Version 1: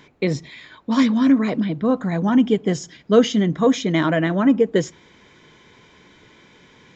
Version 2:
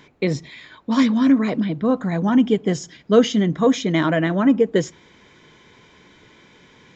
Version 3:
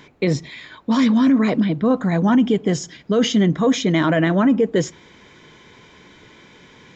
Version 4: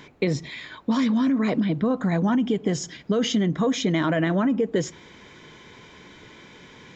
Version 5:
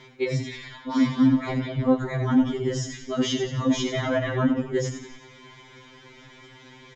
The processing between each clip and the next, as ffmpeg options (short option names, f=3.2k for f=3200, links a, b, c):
-af anull
-af "alimiter=limit=-12.5dB:level=0:latency=1:release=11,volume=3.5dB"
-af "acompressor=threshold=-19dB:ratio=6"
-filter_complex "[0:a]asplit=7[a][b][c][d][e][f][g];[b]adelay=89,afreqshift=-45,volume=-7dB[h];[c]adelay=178,afreqshift=-90,volume=-12.7dB[i];[d]adelay=267,afreqshift=-135,volume=-18.4dB[j];[e]adelay=356,afreqshift=-180,volume=-24dB[k];[f]adelay=445,afreqshift=-225,volume=-29.7dB[l];[g]adelay=534,afreqshift=-270,volume=-35.4dB[m];[a][h][i][j][k][l][m]amix=inputs=7:normalize=0,afftfilt=real='re*2.45*eq(mod(b,6),0)':imag='im*2.45*eq(mod(b,6),0)':win_size=2048:overlap=0.75"